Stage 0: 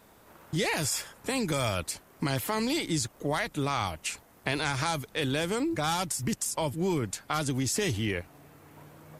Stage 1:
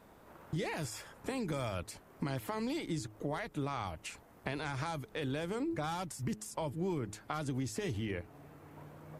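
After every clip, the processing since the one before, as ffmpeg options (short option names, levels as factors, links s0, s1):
-af "acompressor=threshold=0.0141:ratio=2,highshelf=f=2400:g=-10,bandreject=f=106.5:t=h:w=4,bandreject=f=213:t=h:w=4,bandreject=f=319.5:t=h:w=4,bandreject=f=426:t=h:w=4"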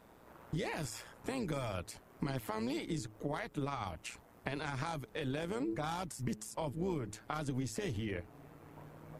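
-af "tremolo=f=120:d=0.571,volume=1.19"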